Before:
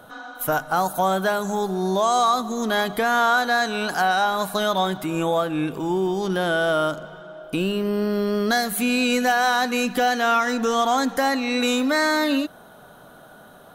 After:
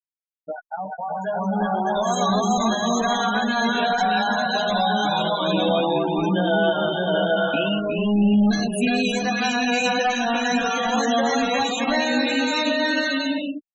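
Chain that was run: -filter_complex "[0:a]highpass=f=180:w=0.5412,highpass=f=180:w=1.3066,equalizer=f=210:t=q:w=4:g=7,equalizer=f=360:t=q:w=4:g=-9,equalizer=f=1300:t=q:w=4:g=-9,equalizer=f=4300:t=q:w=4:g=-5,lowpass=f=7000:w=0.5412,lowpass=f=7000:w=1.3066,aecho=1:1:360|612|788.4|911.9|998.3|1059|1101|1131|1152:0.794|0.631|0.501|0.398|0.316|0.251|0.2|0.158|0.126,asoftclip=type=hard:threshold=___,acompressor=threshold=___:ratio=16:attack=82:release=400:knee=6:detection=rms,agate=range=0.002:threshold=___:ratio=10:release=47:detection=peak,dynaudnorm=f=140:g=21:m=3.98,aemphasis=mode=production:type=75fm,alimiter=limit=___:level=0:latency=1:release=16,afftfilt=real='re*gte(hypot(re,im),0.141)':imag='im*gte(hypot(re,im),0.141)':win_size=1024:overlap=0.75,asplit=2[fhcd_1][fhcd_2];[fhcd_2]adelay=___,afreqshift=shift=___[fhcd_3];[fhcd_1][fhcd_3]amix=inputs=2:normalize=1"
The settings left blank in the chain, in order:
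0.158, 0.0501, 0.00891, 0.335, 11.7, 1.2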